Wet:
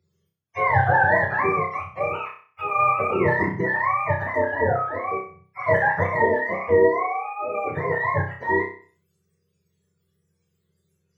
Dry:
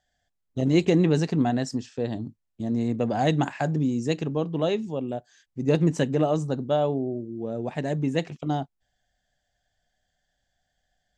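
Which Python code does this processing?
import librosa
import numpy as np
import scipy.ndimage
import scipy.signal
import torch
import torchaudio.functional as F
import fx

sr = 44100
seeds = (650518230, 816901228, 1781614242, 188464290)

y = fx.octave_mirror(x, sr, pivot_hz=530.0)
y = fx.room_flutter(y, sr, wall_m=5.4, rt60_s=0.44)
y = y * librosa.db_to_amplitude(4.0)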